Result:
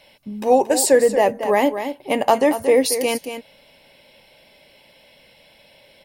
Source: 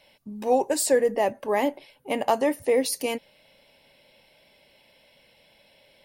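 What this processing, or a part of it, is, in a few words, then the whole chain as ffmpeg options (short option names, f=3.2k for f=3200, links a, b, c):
ducked delay: -filter_complex "[0:a]asplit=3[a][b][c];[b]adelay=229,volume=-9dB[d];[c]apad=whole_len=276900[e];[d][e]sidechaincompress=threshold=-23dB:ratio=8:attack=16:release=207[f];[a][f]amix=inputs=2:normalize=0,volume=6.5dB"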